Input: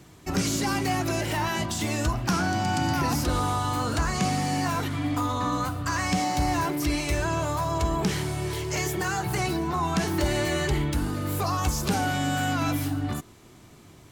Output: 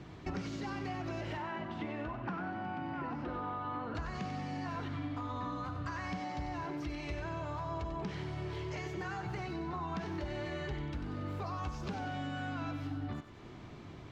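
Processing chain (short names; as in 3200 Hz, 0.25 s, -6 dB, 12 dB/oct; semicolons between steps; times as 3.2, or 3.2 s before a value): 1.37–3.95 three-band isolator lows -12 dB, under 160 Hz, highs -23 dB, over 2800 Hz; compressor 8:1, threshold -38 dBFS, peak gain reduction 17 dB; air absorption 210 m; thinning echo 94 ms, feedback 59%, high-pass 810 Hz, level -8.5 dB; gain +2 dB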